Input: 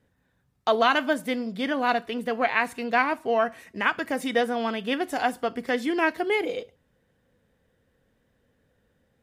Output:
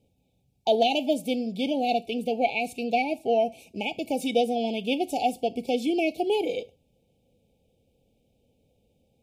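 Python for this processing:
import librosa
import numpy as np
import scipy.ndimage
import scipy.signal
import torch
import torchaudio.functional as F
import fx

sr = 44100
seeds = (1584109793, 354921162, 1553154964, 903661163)

y = fx.brickwall_bandstop(x, sr, low_hz=880.0, high_hz=2200.0)
y = np.clip(y, -10.0 ** (-12.0 / 20.0), 10.0 ** (-12.0 / 20.0))
y = y * 10.0 ** (1.0 / 20.0)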